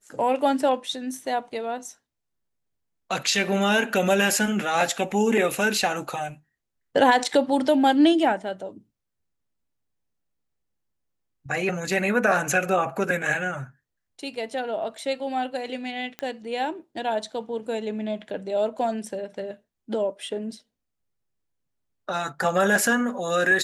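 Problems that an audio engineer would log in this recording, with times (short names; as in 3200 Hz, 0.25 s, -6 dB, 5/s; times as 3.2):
16.19 pop -16 dBFS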